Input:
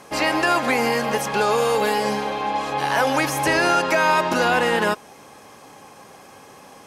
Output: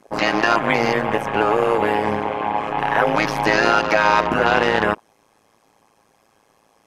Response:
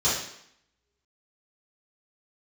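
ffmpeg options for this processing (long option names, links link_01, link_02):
-af "tremolo=f=110:d=0.947,afwtdn=0.0178,volume=6dB"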